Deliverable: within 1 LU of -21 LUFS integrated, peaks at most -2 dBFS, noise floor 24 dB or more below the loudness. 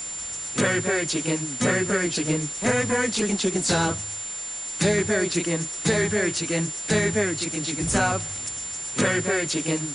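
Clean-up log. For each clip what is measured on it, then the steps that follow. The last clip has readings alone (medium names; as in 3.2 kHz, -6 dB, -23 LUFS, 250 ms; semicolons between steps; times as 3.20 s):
steady tone 7.2 kHz; tone level -31 dBFS; noise floor -33 dBFS; noise floor target -48 dBFS; loudness -24.0 LUFS; peak level -9.5 dBFS; loudness target -21.0 LUFS
-> band-stop 7.2 kHz, Q 30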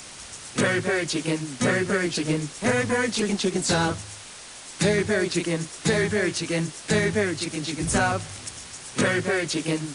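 steady tone not found; noise floor -42 dBFS; noise floor target -49 dBFS
-> noise print and reduce 7 dB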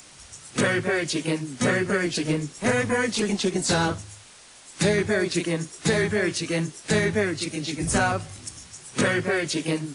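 noise floor -49 dBFS; loudness -24.5 LUFS; peak level -9.5 dBFS; loudness target -21.0 LUFS
-> trim +3.5 dB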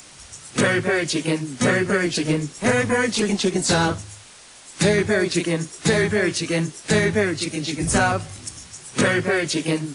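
loudness -21.0 LUFS; peak level -6.0 dBFS; noise floor -45 dBFS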